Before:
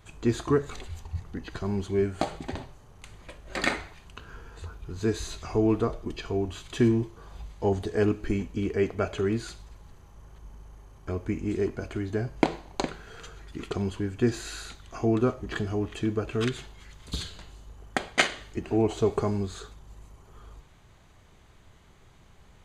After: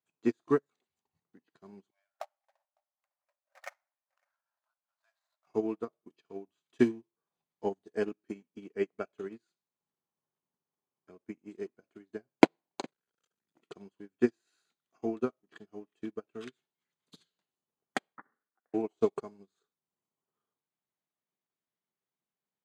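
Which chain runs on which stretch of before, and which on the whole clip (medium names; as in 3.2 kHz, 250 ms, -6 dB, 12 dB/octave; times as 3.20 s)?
1.90–5.47 s: median filter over 15 samples + brick-wall FIR high-pass 530 Hz + delay 554 ms -17.5 dB
12.87–13.62 s: treble shelf 6.2 kHz +10.5 dB + transformer saturation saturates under 750 Hz
18.16–18.74 s: steep high-pass 1.4 kHz 48 dB/octave + compression 12:1, threshold -27 dBFS + frequency inversion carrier 3.3 kHz
whole clip: high-pass 170 Hz 24 dB/octave; transient shaper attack +4 dB, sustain -5 dB; upward expansion 2.5:1, over -38 dBFS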